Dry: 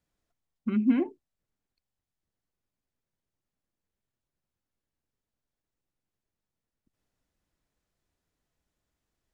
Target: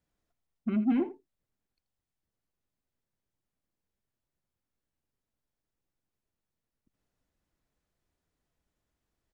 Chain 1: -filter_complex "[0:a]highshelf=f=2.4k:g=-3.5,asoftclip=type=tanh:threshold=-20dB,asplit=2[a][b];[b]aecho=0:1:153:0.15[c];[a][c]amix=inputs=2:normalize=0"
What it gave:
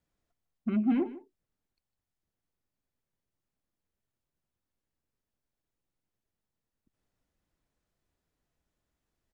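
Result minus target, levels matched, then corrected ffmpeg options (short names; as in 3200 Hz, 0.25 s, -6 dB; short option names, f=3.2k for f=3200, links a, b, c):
echo 71 ms late
-filter_complex "[0:a]highshelf=f=2.4k:g=-3.5,asoftclip=type=tanh:threshold=-20dB,asplit=2[a][b];[b]aecho=0:1:82:0.15[c];[a][c]amix=inputs=2:normalize=0"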